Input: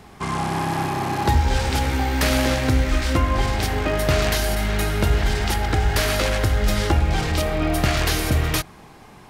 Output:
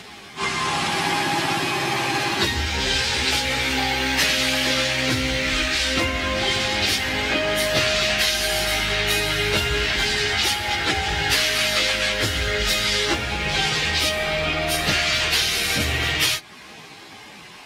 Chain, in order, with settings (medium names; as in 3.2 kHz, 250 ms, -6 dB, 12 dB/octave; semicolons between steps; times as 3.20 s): frequency weighting D; compression 4:1, threshold -20 dBFS, peak gain reduction 7.5 dB; plain phase-vocoder stretch 1.9×; trim +4.5 dB